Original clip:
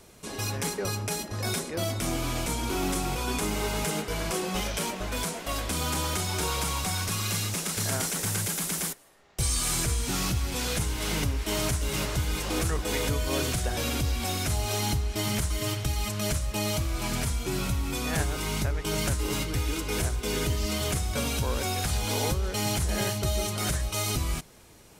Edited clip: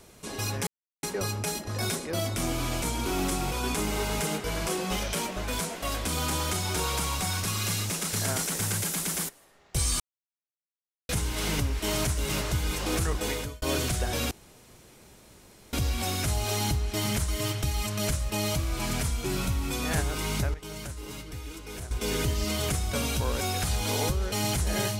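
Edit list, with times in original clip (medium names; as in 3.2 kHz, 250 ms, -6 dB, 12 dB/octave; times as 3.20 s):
0.67 s: insert silence 0.36 s
9.64–10.73 s: mute
12.87–13.26 s: fade out
13.95 s: insert room tone 1.42 s
18.76–20.13 s: gain -10.5 dB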